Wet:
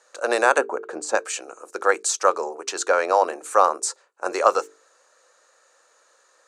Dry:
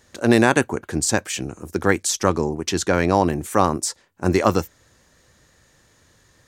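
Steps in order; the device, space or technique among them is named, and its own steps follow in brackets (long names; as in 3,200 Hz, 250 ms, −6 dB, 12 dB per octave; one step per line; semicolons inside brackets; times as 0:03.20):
0:00.58–0:01.15: spectral tilt −3.5 dB per octave
phone speaker on a table (loudspeaker in its box 490–9,000 Hz, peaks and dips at 510 Hz +5 dB, 1,300 Hz +7 dB, 2,000 Hz −7 dB, 3,300 Hz −8 dB, 5,300 Hz −5 dB)
high-shelf EQ 11,000 Hz +5 dB
mains-hum notches 50/100/150/200/250/300/350/400/450 Hz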